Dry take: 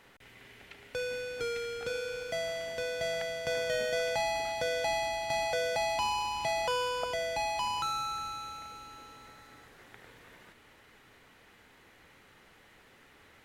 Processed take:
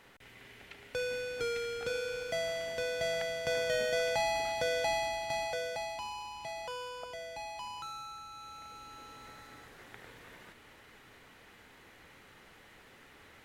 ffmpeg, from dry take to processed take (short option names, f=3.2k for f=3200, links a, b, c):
-af "volume=12dB,afade=t=out:st=4.79:d=1.23:silence=0.316228,afade=t=in:st=8.28:d=1.06:silence=0.251189"